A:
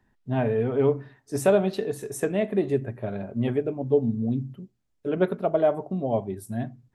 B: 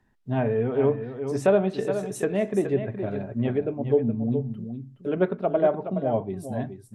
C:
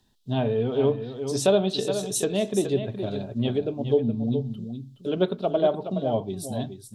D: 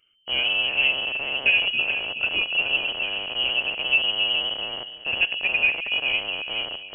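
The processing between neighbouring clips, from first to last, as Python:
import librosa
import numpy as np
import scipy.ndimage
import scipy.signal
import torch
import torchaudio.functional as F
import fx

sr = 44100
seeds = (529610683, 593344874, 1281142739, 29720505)

y1 = fx.env_lowpass_down(x, sr, base_hz=2900.0, full_db=-20.0)
y1 = y1 + 10.0 ** (-9.0 / 20.0) * np.pad(y1, (int(420 * sr / 1000.0), 0))[:len(y1)]
y2 = fx.high_shelf_res(y1, sr, hz=2700.0, db=10.5, q=3.0)
y3 = fx.rattle_buzz(y2, sr, strikes_db=-38.0, level_db=-24.0)
y3 = fx.echo_stepped(y3, sr, ms=136, hz=170.0, octaves=1.4, feedback_pct=70, wet_db=-4.5)
y3 = fx.freq_invert(y3, sr, carrier_hz=3100)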